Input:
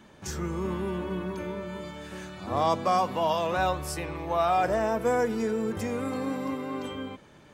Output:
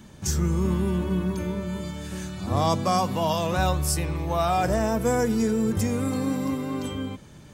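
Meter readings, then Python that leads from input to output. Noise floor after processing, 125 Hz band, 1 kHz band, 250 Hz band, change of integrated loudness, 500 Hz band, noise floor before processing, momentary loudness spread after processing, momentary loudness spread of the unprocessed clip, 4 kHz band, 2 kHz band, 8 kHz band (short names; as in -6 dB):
-47 dBFS, +10.5 dB, 0.0 dB, +6.5 dB, +3.5 dB, +1.0 dB, -53 dBFS, 10 LU, 13 LU, +5.0 dB, +0.5 dB, +10.0 dB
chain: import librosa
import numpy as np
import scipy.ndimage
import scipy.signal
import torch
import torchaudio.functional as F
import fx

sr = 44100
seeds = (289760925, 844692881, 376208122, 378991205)

y = fx.bass_treble(x, sr, bass_db=12, treble_db=11)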